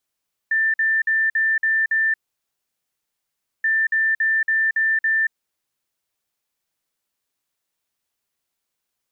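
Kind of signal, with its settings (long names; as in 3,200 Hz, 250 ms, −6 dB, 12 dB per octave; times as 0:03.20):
beeps in groups sine 1,780 Hz, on 0.23 s, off 0.05 s, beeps 6, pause 1.50 s, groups 2, −16 dBFS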